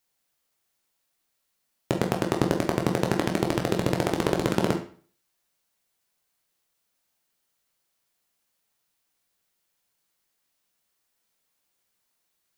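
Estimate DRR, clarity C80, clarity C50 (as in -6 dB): 1.5 dB, 13.0 dB, 8.5 dB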